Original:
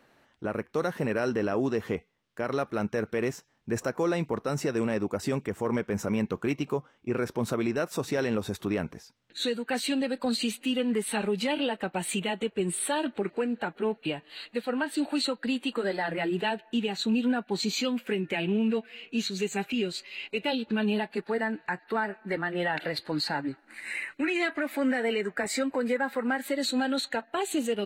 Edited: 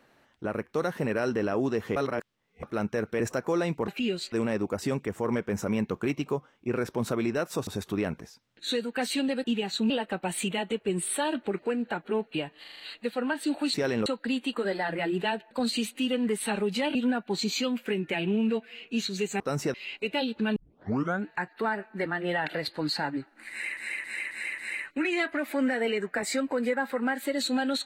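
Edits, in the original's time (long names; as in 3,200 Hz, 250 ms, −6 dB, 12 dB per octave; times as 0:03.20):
0:01.96–0:02.63: reverse
0:03.20–0:03.71: remove
0:04.39–0:04.73: swap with 0:19.61–0:20.05
0:08.08–0:08.40: move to 0:15.25
0:10.17–0:11.61: swap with 0:16.70–0:17.16
0:14.31: stutter 0.04 s, 6 plays
0:20.87: tape start 0.70 s
0:23.81–0:24.08: repeat, 5 plays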